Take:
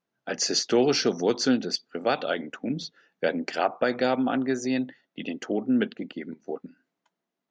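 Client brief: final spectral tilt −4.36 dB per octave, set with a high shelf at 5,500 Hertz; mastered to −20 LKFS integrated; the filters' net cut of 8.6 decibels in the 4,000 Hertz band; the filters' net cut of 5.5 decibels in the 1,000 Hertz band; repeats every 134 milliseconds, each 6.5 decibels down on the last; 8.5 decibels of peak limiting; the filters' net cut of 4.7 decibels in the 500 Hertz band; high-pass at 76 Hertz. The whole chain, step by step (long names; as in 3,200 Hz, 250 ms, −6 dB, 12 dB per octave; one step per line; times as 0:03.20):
high-pass filter 76 Hz
parametric band 500 Hz −4.5 dB
parametric band 1,000 Hz −5.5 dB
parametric band 4,000 Hz −6.5 dB
high-shelf EQ 5,500 Hz −8.5 dB
brickwall limiter −22.5 dBFS
repeating echo 134 ms, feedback 47%, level −6.5 dB
level +13 dB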